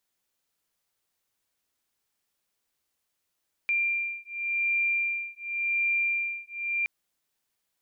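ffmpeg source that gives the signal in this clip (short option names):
-f lavfi -i "aevalsrc='0.0376*(sin(2*PI*2380*t)+sin(2*PI*2380.9*t))':d=3.17:s=44100"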